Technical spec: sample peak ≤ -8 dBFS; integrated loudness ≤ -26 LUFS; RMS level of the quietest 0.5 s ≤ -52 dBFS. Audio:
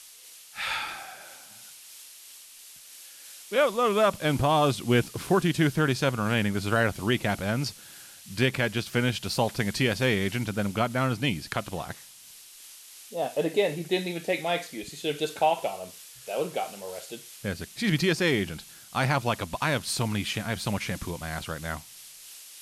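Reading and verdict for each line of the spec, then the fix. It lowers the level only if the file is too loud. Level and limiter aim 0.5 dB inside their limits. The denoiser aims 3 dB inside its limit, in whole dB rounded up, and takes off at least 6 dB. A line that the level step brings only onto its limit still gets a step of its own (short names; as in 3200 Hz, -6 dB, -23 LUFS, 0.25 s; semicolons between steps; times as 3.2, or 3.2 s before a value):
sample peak -12.0 dBFS: OK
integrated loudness -27.5 LUFS: OK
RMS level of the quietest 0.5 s -49 dBFS: fail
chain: denoiser 6 dB, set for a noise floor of -49 dBFS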